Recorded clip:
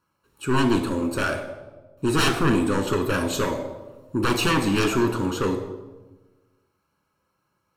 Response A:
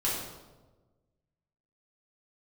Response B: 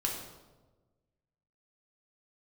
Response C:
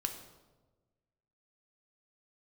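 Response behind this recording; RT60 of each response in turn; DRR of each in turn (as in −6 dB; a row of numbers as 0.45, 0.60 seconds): C; 1.2, 1.2, 1.2 seconds; −6.5, −1.0, 5.0 decibels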